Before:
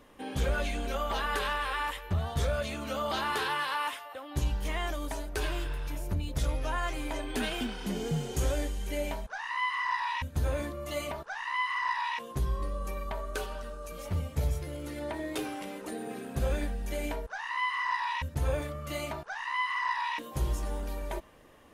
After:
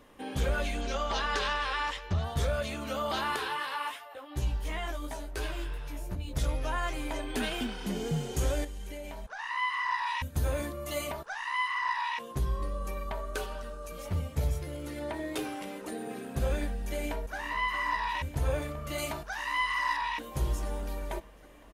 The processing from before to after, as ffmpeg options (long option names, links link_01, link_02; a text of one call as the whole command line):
ffmpeg -i in.wav -filter_complex "[0:a]asettb=1/sr,asplit=3[link_01][link_02][link_03];[link_01]atrim=end=0.814[link_04];[link_02]atrim=start=0.81:end=2.24,asetpts=PTS-STARTPTS,afade=type=in:duration=0.004:curve=qsin,afade=type=out:start_time=1.426:duration=0.004:curve=qsin,lowpass=frequency=5700:width_type=q:width=2.4[link_05];[link_03]atrim=start=2.236[link_06];[link_04][link_05]acrossfade=duration=0.004:curve1=hsin:curve2=qsin[link_07];[link_07][link_06]acrossfade=duration=0.004:curve1=qsin:curve2=hsin,asettb=1/sr,asplit=3[link_08][link_09][link_10];[link_08]atrim=end=3.364[link_11];[link_09]atrim=start=3.36:end=6.33,asetpts=PTS-STARTPTS,afade=type=in:duration=0.004:curve=qsin,afade=type=out:start_time=2.966:duration=0.004:curve=qsin,flanger=delay=15.5:depth=2.7:speed=2.8[link_12];[link_10]atrim=start=6.326[link_13];[link_11][link_12]acrossfade=duration=0.004:curve1=hsin:curve2=qsin[link_14];[link_14][link_13]acrossfade=duration=0.004:curve1=qsin:curve2=hsin,asettb=1/sr,asplit=3[link_15][link_16][link_17];[link_15]atrim=end=8.644[link_18];[link_16]atrim=start=8.64:end=9.39,asetpts=PTS-STARTPTS,afade=type=in:duration=0.004:curve=qsin,afade=type=out:start_time=0.746:duration=0.004:curve=qsin,acompressor=threshold=-36dB:ratio=12:attack=3.2:release=140:knee=1:detection=peak[link_19];[link_17]atrim=start=9.386[link_20];[link_18][link_19]acrossfade=duration=0.004:curve1=hsin:curve2=qsin[link_21];[link_21][link_20]acrossfade=duration=0.004:curve1=qsin:curve2=hsin,asettb=1/sr,asplit=3[link_22][link_23][link_24];[link_22]atrim=end=10.064[link_25];[link_23]atrim=start=10.06:end=11.68,asetpts=PTS-STARTPTS,afade=type=in:duration=0.004:curve=qsin,afade=type=out:start_time=1.616:duration=0.004:curve=qsin,highshelf=frequency=8000:gain=8.5[link_26];[link_24]atrim=start=11.676[link_27];[link_25][link_26]acrossfade=duration=0.004:curve1=hsin:curve2=qsin[link_28];[link_28][link_27]acrossfade=duration=0.004:curve1=qsin:curve2=hsin,asplit=2[link_29][link_30];[link_30]afade=type=in:start_time=16.72:duration=0.01,afade=type=out:start_time=17.35:duration=0.01,aecho=0:1:410|820|1230|1640|2050|2460|2870|3280|3690|4100|4510|4920:0.298538|0.253758|0.215694|0.18334|0.155839|0.132463|0.112594|0.0957045|0.0813488|0.0691465|0.0587745|0.0499584[link_31];[link_29][link_31]amix=inputs=2:normalize=0,asettb=1/sr,asplit=3[link_32][link_33][link_34];[link_32]atrim=end=18.984[link_35];[link_33]atrim=start=18.98:end=19.97,asetpts=PTS-STARTPTS,afade=type=in:duration=0.004:curve=qsin,afade=type=out:start_time=0.986:duration=0.004:curve=qsin,highshelf=frequency=4000:gain=9[link_36];[link_34]atrim=start=19.966[link_37];[link_35][link_36]acrossfade=duration=0.004:curve1=hsin:curve2=qsin[link_38];[link_38][link_37]acrossfade=duration=0.004:curve1=qsin:curve2=hsin" out.wav